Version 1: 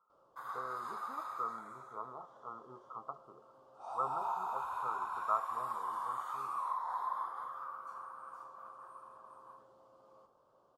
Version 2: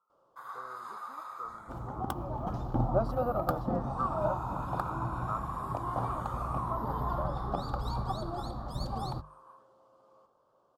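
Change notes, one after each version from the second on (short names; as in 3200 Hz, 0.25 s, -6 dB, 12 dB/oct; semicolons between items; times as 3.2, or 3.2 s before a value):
speech -3.5 dB; second sound: unmuted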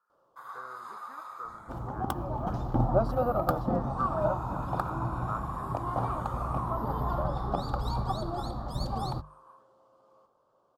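speech: remove brick-wall FIR low-pass 1400 Hz; second sound +3.0 dB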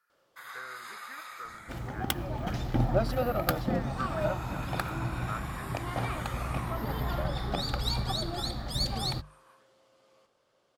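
master: add resonant high shelf 1500 Hz +11 dB, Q 3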